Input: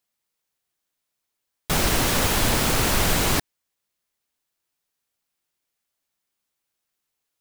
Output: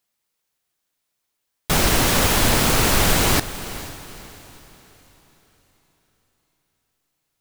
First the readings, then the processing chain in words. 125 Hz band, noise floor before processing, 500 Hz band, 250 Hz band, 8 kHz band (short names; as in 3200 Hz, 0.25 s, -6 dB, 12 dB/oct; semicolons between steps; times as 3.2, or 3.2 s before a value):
+3.5 dB, -81 dBFS, +3.5 dB, +3.5 dB, +3.5 dB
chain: diffused feedback echo 0.471 s, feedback 41%, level -14.5 dB; gain +3.5 dB